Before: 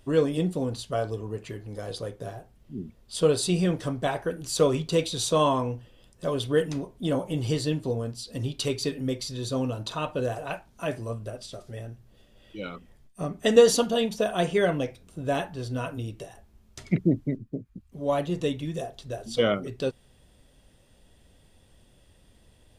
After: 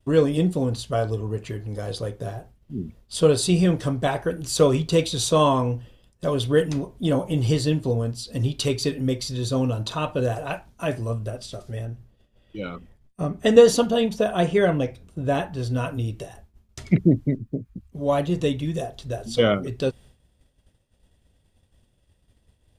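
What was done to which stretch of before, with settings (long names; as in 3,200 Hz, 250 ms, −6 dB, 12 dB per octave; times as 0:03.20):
0:11.85–0:15.53: high-shelf EQ 2,800 Hz −5 dB
whole clip: downward expander −48 dBFS; parametric band 72 Hz +6 dB 2.1 octaves; level +3.5 dB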